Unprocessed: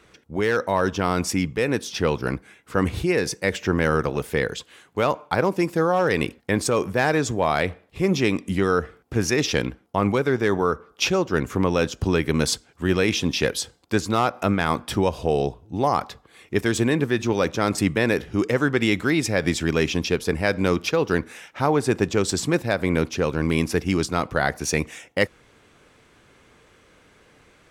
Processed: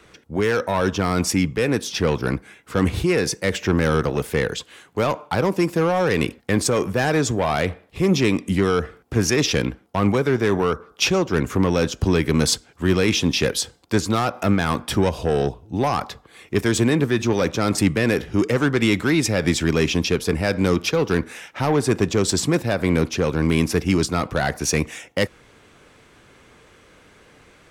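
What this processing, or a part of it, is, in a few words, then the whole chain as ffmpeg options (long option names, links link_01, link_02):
one-band saturation: -filter_complex "[0:a]acrossover=split=260|3700[link_01][link_02][link_03];[link_02]asoftclip=type=tanh:threshold=-20dB[link_04];[link_01][link_04][link_03]amix=inputs=3:normalize=0,volume=4dB"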